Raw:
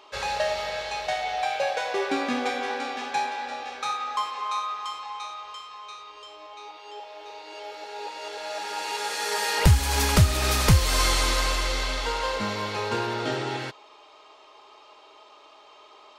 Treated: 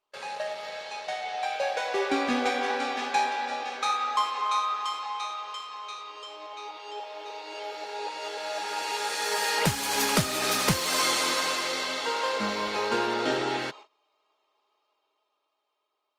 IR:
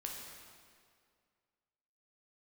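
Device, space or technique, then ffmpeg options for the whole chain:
video call: -af "highpass=f=170:w=0.5412,highpass=f=170:w=1.3066,dynaudnorm=f=330:g=11:m=9.5dB,agate=range=-23dB:threshold=-38dB:ratio=16:detection=peak,volume=-7dB" -ar 48000 -c:a libopus -b:a 32k

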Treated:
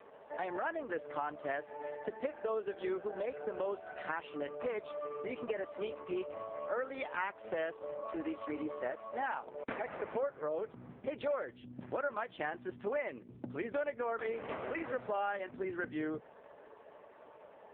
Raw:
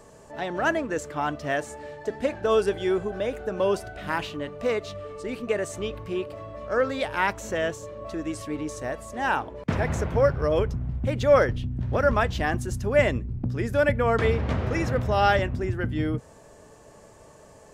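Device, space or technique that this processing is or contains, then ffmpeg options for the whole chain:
voicemail: -af "highpass=390,lowpass=2.9k,acompressor=threshold=-33dB:ratio=6" -ar 8000 -c:a libopencore_amrnb -b:a 4750

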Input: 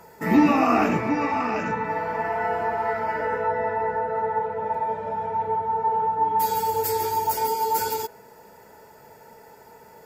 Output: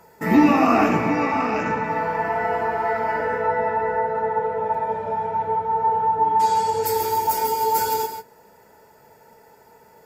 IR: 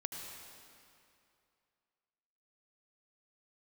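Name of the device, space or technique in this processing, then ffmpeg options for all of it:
keyed gated reverb: -filter_complex "[0:a]asplit=3[a][b][c];[a]afade=t=out:st=6.16:d=0.02[d];[b]lowpass=f=8.7k:w=0.5412,lowpass=f=8.7k:w=1.3066,afade=t=in:st=6.16:d=0.02,afade=t=out:st=6.85:d=0.02[e];[c]afade=t=in:st=6.85:d=0.02[f];[d][e][f]amix=inputs=3:normalize=0,asplit=3[g][h][i];[1:a]atrim=start_sample=2205[j];[h][j]afir=irnorm=-1:irlink=0[k];[i]apad=whole_len=443284[l];[k][l]sidechaingate=range=-33dB:threshold=-43dB:ratio=16:detection=peak,volume=0.5dB[m];[g][m]amix=inputs=2:normalize=0,volume=-3dB"

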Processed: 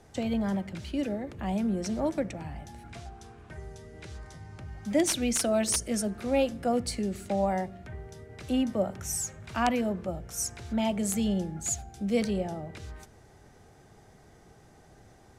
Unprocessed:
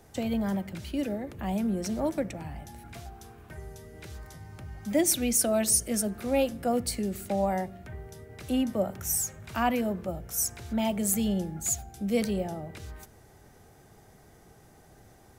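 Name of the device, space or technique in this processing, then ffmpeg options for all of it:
overflowing digital effects unit: -filter_complex "[0:a]asettb=1/sr,asplit=3[a][b][c];[a]atrim=end=2.884[d];[b]atrim=start=2.88:end=4.62,asetpts=PTS-STARTPTS,afade=t=in:d=0.004:c=qsin,afade=t=out:st=1.736:d=0.004:c=qsin,lowpass=f=11k:w=0.5412,lowpass=f=11k:w=1.3066[e];[c]atrim=start=4.616[f];[d][e]acrossfade=d=0.004:c1=hsin:c2=qsin[g];[g][f]acrossfade=d=0.004:c1=qsin:c2=hsin,aeval=exprs='(mod(5.31*val(0)+1,2)-1)/5.31':c=same,lowpass=8.1k"

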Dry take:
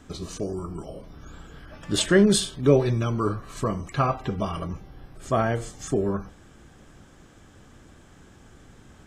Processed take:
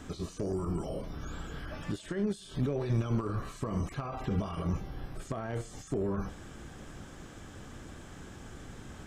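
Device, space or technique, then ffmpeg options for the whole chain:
de-esser from a sidechain: -filter_complex "[0:a]asplit=2[a][b];[b]highpass=f=5.1k:p=1,apad=whole_len=399702[c];[a][c]sidechaincompress=threshold=-54dB:ratio=12:attack=0.61:release=21,volume=4dB"

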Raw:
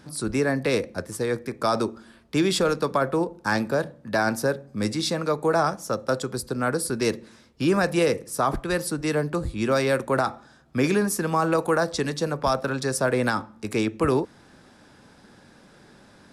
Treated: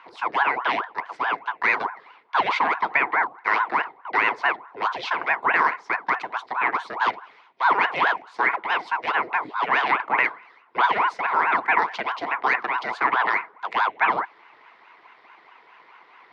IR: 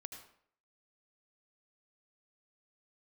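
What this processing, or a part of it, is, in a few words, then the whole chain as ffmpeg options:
voice changer toy: -af "aeval=exprs='val(0)*sin(2*PI*730*n/s+730*0.75/4.7*sin(2*PI*4.7*n/s))':c=same,highpass=470,equalizer=f=570:t=q:w=4:g=-9,equalizer=f=1k:t=q:w=4:g=8,equalizer=f=2.1k:t=q:w=4:g=9,lowpass=f=3.6k:w=0.5412,lowpass=f=3.6k:w=1.3066,volume=2.5dB"

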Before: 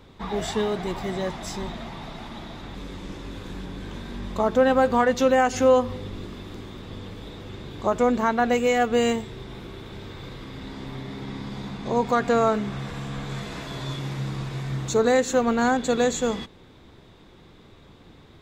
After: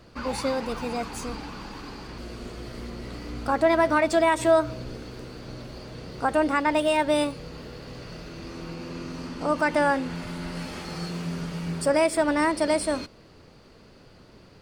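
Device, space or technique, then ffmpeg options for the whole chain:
nightcore: -af "asetrate=55566,aresample=44100,volume=-1.5dB"

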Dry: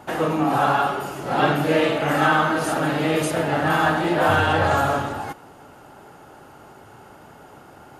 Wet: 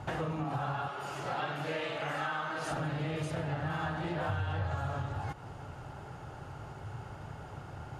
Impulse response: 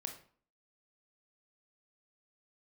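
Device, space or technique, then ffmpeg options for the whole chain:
jukebox: -filter_complex "[0:a]asettb=1/sr,asplit=3[a][b][c];[a]atrim=end=0.884[d];[b]atrim=start=0.88:end=2.71,asetpts=PTS-STARTPTS,afade=t=in:d=0.004:c=qsin,afade=t=out:st=1.826:d=0.004:c=qsin,highpass=f=620:p=1[e];[c]atrim=start=2.706[f];[d][e]acrossfade=d=0.004:c1=hsin:c2=qsin[g];[g][f]acrossfade=d=0.004:c1=qsin:c2=hsin,lowpass=7k,lowshelf=f=170:t=q:w=1.5:g=11,acompressor=threshold=-31dB:ratio=5,volume=-2.5dB"

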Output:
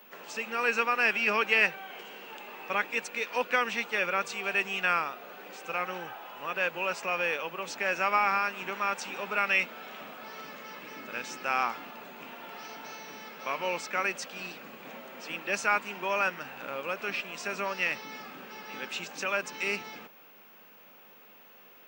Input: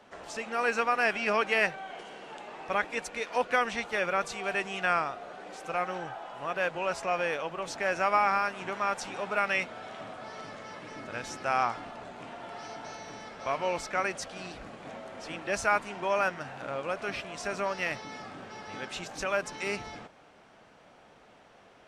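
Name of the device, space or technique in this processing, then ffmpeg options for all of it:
old television with a line whistle: -af "highpass=f=180:w=0.5412,highpass=f=180:w=1.3066,equalizer=f=310:t=q:w=4:g=-4,equalizer=f=680:t=q:w=4:g=-8,equalizer=f=2.6k:t=q:w=4:g=7,lowpass=f=8.7k:w=0.5412,lowpass=f=8.7k:w=1.3066,aeval=exprs='val(0)+0.002*sin(2*PI*15625*n/s)':c=same"

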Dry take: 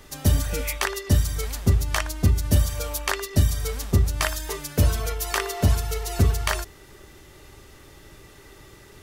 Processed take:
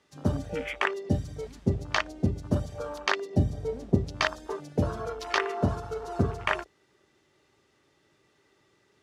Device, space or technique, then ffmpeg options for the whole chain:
over-cleaned archive recording: -filter_complex "[0:a]asettb=1/sr,asplit=3[a][b][c];[a]atrim=end=3.384[d];[b]atrim=start=3.38:end=3.95,asetpts=PTS-STARTPTS,afade=t=in:d=0.004:c=qsin,afade=t=out:st=0.566:d=0.004:c=qsin,tiltshelf=f=1.2k:g=4[e];[c]atrim=start=3.946[f];[d][e]acrossfade=d=0.004:c1=hsin:c2=qsin[g];[g][f]acrossfade=d=0.004:c1=qsin:c2=hsin,highpass=150,lowpass=6.6k,afwtdn=0.0224"

